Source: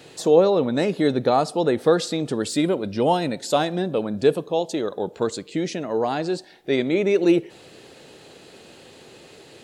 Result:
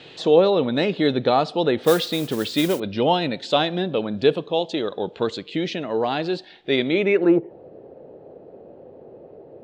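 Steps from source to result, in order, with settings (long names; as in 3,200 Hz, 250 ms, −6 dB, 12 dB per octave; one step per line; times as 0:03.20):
low-pass filter sweep 3,400 Hz → 590 Hz, 0:07.00–0:07.53
0:01.83–0:02.80: noise that follows the level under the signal 16 dB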